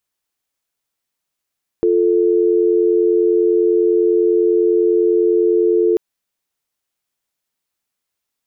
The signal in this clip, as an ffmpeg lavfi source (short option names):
-f lavfi -i "aevalsrc='0.2*(sin(2*PI*350*t)+sin(2*PI*440*t))':d=4.14:s=44100"